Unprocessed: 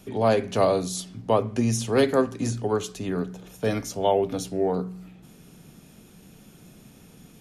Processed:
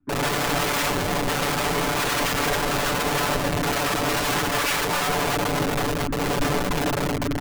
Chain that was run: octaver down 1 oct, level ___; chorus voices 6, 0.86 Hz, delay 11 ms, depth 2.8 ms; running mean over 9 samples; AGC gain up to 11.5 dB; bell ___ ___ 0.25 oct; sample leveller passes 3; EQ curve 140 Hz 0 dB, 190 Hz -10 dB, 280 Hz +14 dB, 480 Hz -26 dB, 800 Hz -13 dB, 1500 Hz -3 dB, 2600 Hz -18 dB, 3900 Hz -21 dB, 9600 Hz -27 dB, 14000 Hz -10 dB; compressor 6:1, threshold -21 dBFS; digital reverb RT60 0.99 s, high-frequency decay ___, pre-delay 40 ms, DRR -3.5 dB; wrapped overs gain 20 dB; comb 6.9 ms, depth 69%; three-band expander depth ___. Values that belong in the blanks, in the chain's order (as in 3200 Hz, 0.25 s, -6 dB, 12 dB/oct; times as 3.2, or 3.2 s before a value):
+2 dB, 130 Hz, +2.5 dB, 0.9×, 40%